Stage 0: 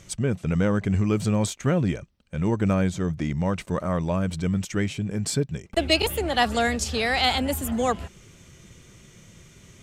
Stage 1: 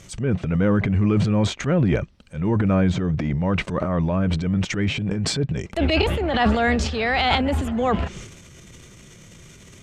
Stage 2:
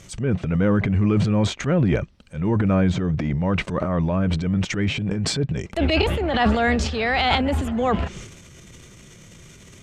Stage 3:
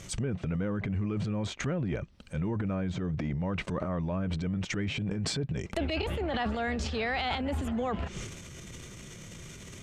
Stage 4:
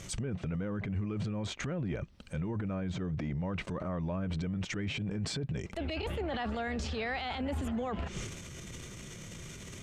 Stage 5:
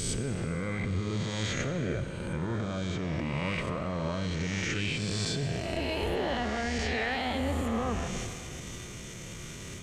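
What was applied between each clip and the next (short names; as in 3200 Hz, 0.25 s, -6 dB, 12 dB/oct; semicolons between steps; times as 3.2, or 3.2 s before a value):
treble ducked by the level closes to 2800 Hz, closed at -22.5 dBFS; transient shaper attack -7 dB, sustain +10 dB; gain +3.5 dB
nothing audible
compressor 6:1, threshold -29 dBFS, peak gain reduction 14 dB
limiter -27.5 dBFS, peak gain reduction 10 dB
spectral swells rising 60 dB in 1.78 s; plate-style reverb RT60 2.7 s, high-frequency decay 0.95×, pre-delay 0 ms, DRR 8 dB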